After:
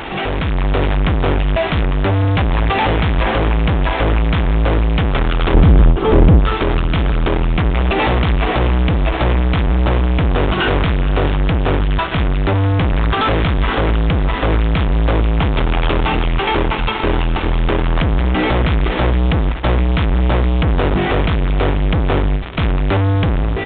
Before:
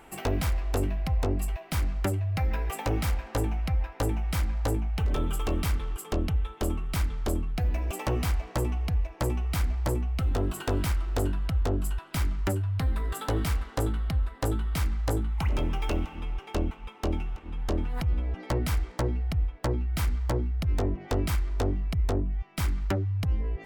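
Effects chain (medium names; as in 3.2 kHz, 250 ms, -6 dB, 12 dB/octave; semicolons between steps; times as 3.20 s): fuzz box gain 59 dB, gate -51 dBFS; level rider gain up to 6 dB; 5.54–6.40 s: tilt shelf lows +8 dB; on a send: echo that smears into a reverb 522 ms, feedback 49%, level -16 dB; on the sum: resampled via 8 kHz; endings held to a fixed fall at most 130 dB/s; trim -5.5 dB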